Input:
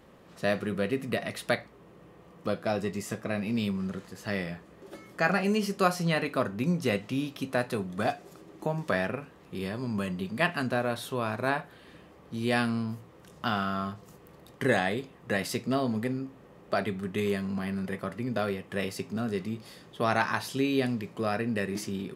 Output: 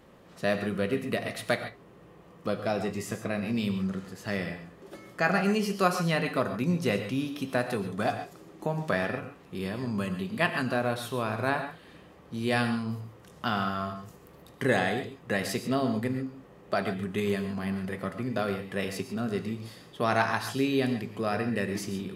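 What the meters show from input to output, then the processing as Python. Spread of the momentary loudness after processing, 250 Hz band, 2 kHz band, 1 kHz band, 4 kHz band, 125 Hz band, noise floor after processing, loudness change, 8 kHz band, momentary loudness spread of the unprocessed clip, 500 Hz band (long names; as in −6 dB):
11 LU, +0.5 dB, +0.5 dB, +1.0 dB, +0.5 dB, +1.0 dB, −53 dBFS, +0.5 dB, +0.5 dB, 10 LU, +0.5 dB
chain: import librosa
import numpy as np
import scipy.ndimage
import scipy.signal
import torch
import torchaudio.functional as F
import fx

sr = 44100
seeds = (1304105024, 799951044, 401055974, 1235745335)

y = fx.rev_gated(x, sr, seeds[0], gate_ms=160, shape='rising', drr_db=8.5)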